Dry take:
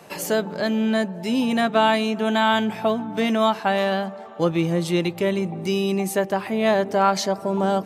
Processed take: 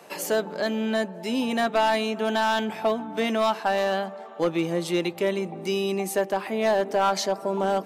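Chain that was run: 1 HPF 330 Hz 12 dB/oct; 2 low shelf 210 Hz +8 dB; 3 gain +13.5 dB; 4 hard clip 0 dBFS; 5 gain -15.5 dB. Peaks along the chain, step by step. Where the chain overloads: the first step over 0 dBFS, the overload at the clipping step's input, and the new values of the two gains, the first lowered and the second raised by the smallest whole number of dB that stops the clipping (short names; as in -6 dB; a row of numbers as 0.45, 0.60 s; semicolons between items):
-6.0, -5.0, +8.5, 0.0, -15.5 dBFS; step 3, 8.5 dB; step 3 +4.5 dB, step 5 -6.5 dB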